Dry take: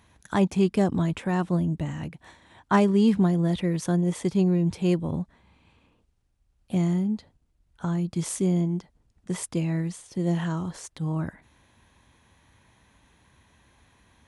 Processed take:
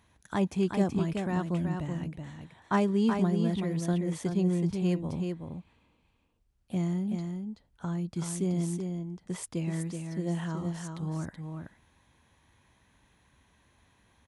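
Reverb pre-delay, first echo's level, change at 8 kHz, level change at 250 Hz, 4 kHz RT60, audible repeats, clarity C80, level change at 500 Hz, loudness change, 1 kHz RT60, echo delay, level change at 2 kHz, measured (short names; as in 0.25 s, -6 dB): none, -5.5 dB, -5.0 dB, -5.0 dB, none, 1, none, -5.0 dB, -5.5 dB, none, 0.377 s, -5.0 dB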